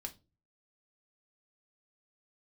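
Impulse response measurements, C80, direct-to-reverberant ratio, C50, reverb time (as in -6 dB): 25.5 dB, 3.5 dB, 17.5 dB, no single decay rate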